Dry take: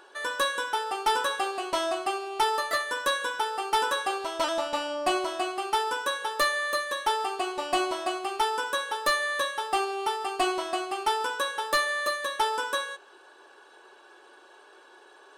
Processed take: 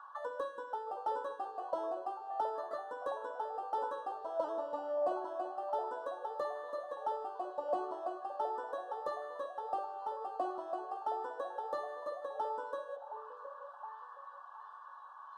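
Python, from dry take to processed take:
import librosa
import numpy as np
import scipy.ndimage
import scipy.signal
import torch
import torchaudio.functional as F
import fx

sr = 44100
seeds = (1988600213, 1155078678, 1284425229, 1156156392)

y = fx.hum_notches(x, sr, base_hz=60, count=3)
y = fx.auto_wah(y, sr, base_hz=400.0, top_hz=1200.0, q=7.3, full_db=-26.5, direction='down')
y = fx.fixed_phaser(y, sr, hz=950.0, stages=4)
y = fx.echo_stepped(y, sr, ms=718, hz=580.0, octaves=0.7, feedback_pct=70, wet_db=-7.5)
y = y * librosa.db_to_amplitude(11.5)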